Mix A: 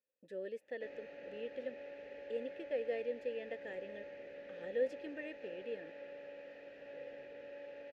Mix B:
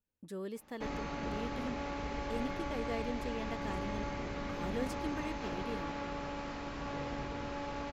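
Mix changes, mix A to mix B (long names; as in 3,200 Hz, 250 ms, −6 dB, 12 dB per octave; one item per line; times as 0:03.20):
speech −9.5 dB
master: remove formant filter e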